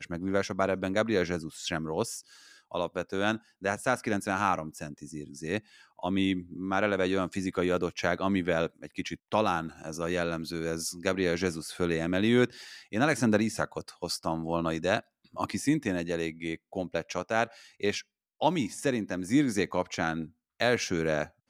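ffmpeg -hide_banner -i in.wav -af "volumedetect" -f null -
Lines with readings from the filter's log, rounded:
mean_volume: -30.2 dB
max_volume: -10.7 dB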